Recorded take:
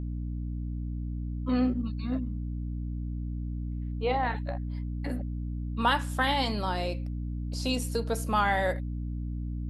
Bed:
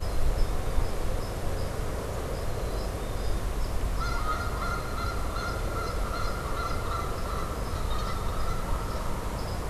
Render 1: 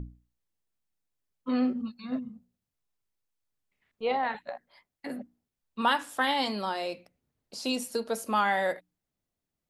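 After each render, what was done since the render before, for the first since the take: hum notches 60/120/180/240/300 Hz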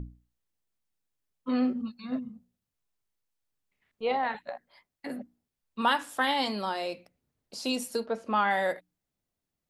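8.05–8.49 s: low-pass 2.1 kHz -> 4 kHz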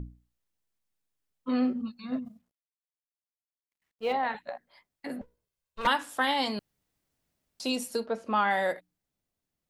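2.25–4.13 s: companding laws mixed up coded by A; 5.21–5.87 s: comb filter that takes the minimum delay 1.9 ms; 6.59–7.60 s: room tone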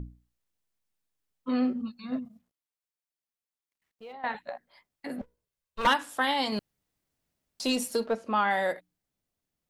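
2.25–4.24 s: compression 3:1, threshold -47 dBFS; 5.18–5.94 s: waveshaping leveller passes 1; 6.52–8.15 s: waveshaping leveller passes 1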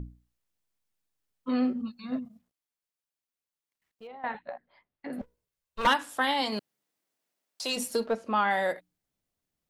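4.07–5.13 s: distance through air 300 m; 6.40–7.76 s: high-pass 180 Hz -> 540 Hz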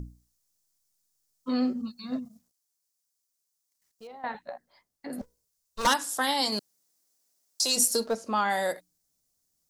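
resonant high shelf 4 kHz +11.5 dB, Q 1.5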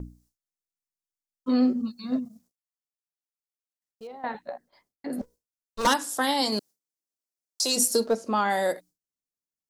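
peaking EQ 330 Hz +6 dB 1.9 oct; gate with hold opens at -56 dBFS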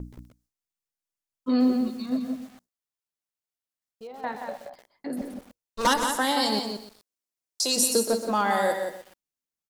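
echo from a far wall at 30 m, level -6 dB; bit-crushed delay 125 ms, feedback 35%, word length 7-bit, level -10.5 dB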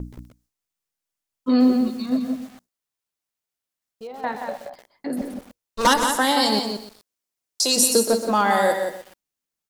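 trim +5 dB

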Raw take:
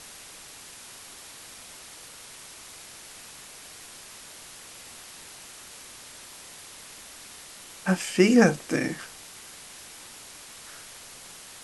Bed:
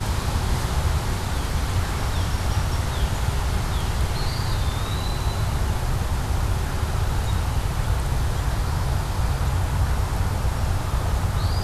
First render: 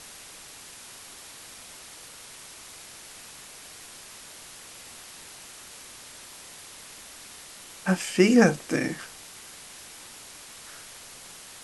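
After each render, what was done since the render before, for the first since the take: no audible change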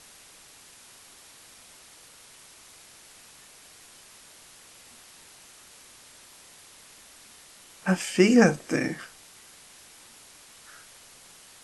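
noise print and reduce 6 dB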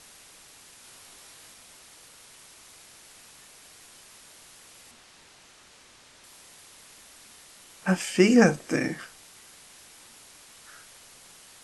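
0.82–1.53 s: doubling 20 ms -4.5 dB; 4.91–6.24 s: distance through air 51 m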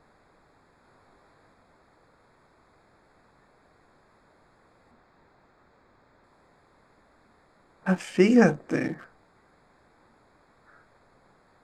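local Wiener filter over 15 samples; treble shelf 3.8 kHz -10.5 dB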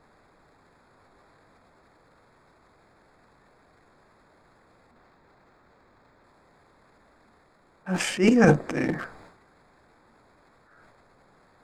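transient shaper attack -9 dB, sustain +12 dB; reverse; upward compressor, threshold -55 dBFS; reverse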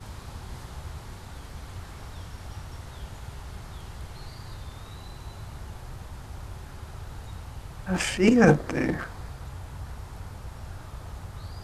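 add bed -16.5 dB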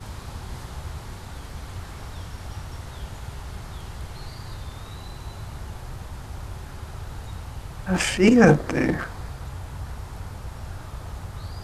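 trim +4 dB; peak limiter -3 dBFS, peak gain reduction 3 dB

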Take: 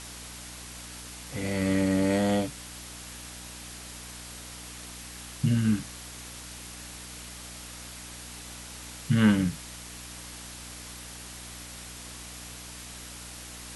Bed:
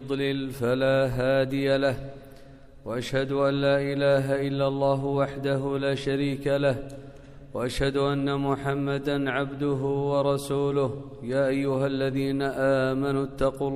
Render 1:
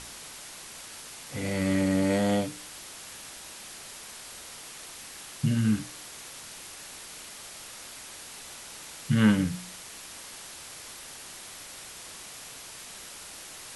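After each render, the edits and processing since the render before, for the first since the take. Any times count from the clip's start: de-hum 60 Hz, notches 8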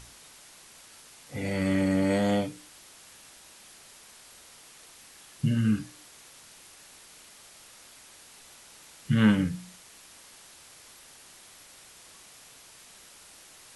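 noise print and reduce 8 dB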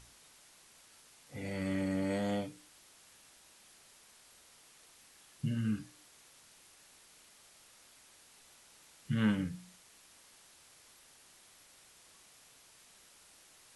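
trim -9 dB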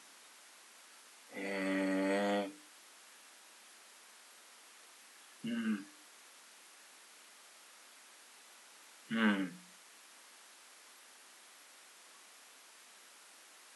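steep high-pass 210 Hz 36 dB/octave; peaking EQ 1.4 kHz +6 dB 2.2 oct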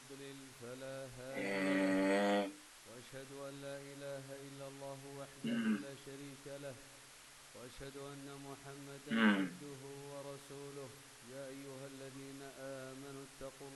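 add bed -25.5 dB

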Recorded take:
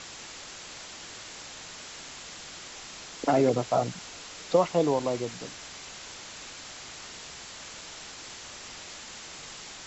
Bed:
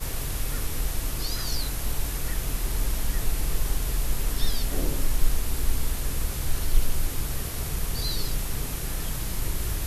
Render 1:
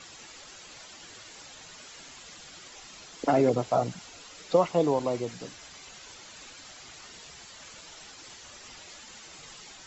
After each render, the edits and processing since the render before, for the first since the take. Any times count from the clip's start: noise reduction 9 dB, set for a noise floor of -44 dBFS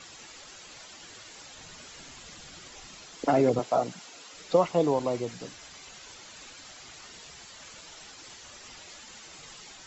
1.57–2.95 s: bass shelf 240 Hz +7.5 dB; 3.59–4.34 s: high-pass 200 Hz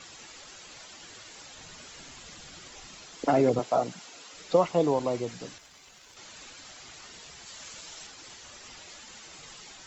5.58–6.17 s: companding laws mixed up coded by A; 7.46–8.07 s: treble shelf 3.8 kHz +5.5 dB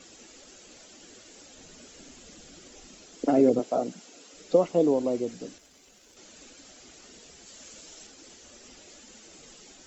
ten-band graphic EQ 125 Hz -9 dB, 250 Hz +7 dB, 500 Hz +3 dB, 1 kHz -9 dB, 2 kHz -5 dB, 4 kHz -5 dB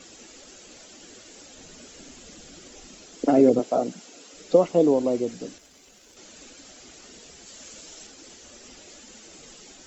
trim +3.5 dB

